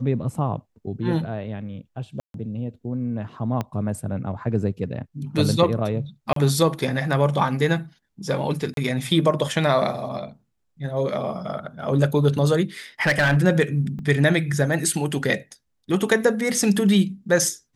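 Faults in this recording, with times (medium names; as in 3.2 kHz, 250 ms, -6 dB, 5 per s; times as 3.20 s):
2.20–2.34 s: dropout 142 ms
3.61 s: pop -13 dBFS
6.33–6.36 s: dropout 33 ms
8.74–8.77 s: dropout 32 ms
13.02–13.38 s: clipped -14 dBFS
13.99 s: dropout 2.3 ms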